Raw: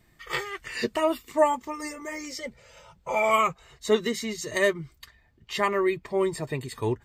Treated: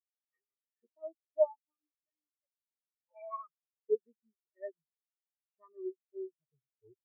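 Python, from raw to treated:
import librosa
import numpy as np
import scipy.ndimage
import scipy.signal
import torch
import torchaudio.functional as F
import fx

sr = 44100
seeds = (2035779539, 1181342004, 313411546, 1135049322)

y = fx.spectral_expand(x, sr, expansion=4.0)
y = y * librosa.db_to_amplitude(-8.5)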